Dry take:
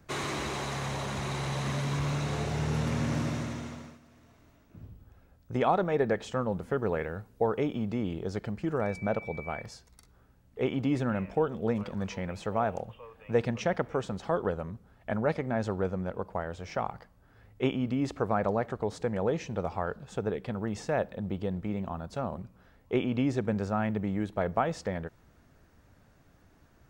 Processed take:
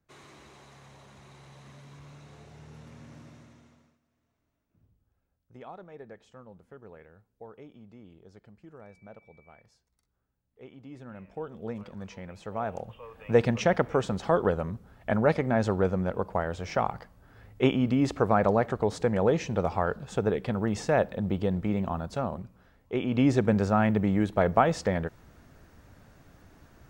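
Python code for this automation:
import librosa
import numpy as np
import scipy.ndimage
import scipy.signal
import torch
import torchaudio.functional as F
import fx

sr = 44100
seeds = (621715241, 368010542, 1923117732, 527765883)

y = fx.gain(x, sr, db=fx.line((10.8, -19.0), (11.61, -7.0), (12.38, -7.0), (13.22, 5.0), (21.97, 5.0), (22.92, -3.0), (23.26, 6.0)))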